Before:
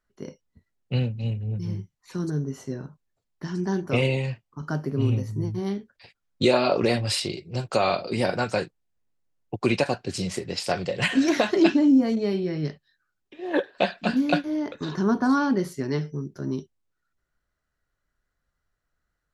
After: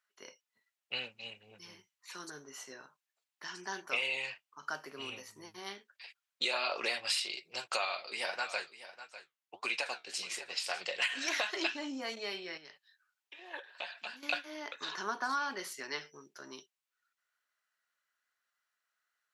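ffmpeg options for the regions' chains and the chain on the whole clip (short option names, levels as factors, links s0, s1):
-filter_complex "[0:a]asettb=1/sr,asplit=3[s0][s1][s2];[s0]atrim=end=7.854[s3];[s1]atrim=start=7.85:end=10.81,asetpts=PTS-STARTPTS,afade=t=in:d=0.004:c=qsin,afade=t=out:st=2.956:d=0.004:c=qsin,flanger=delay=6.2:depth=9.3:regen=62:speed=1.6:shape=sinusoidal,aecho=1:1:599:0.178,atrim=end_sample=130536[s4];[s2]atrim=start=10.806[s5];[s3][s4]acrossfade=d=0.004:c1=hsin:c2=qsin[s6];[s6][s5]acrossfade=d=0.004:c1=qsin:c2=hsin,asettb=1/sr,asplit=3[s7][s8][s9];[s7]atrim=end=12.574[s10];[s8]atrim=start=12.57:end=14.23,asetpts=PTS-STARTPTS,afade=t=in:d=0.004:c=qsin,afade=t=out:st=1.656:d=0.004:c=qsin,acompressor=threshold=0.0112:ratio=2.5:attack=3.2:release=140:knee=1:detection=peak,equalizer=f=900:w=6.9:g=5.5[s11];[s9]atrim=start=14.226[s12];[s10][s11]acrossfade=d=0.004:c1=hsin:c2=qsin[s13];[s13][s12]acrossfade=d=0.004:c1=qsin:c2=hsin,highpass=1100,equalizer=f=2700:w=2.3:g=3.5,acompressor=threshold=0.0316:ratio=5"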